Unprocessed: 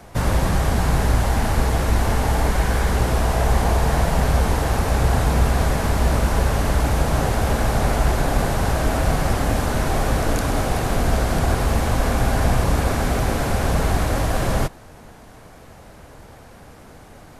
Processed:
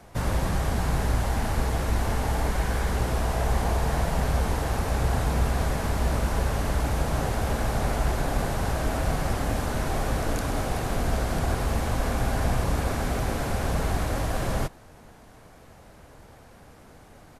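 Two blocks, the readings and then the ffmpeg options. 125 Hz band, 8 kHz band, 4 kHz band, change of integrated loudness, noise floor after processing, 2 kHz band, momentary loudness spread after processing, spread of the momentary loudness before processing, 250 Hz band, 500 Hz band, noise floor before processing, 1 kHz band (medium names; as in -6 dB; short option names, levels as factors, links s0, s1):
-6.5 dB, -6.5 dB, -6.5 dB, -6.5 dB, -50 dBFS, -6.5 dB, 2 LU, 2 LU, -6.5 dB, -6.5 dB, -44 dBFS, -6.5 dB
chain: -af "aresample=32000,aresample=44100,volume=0.473"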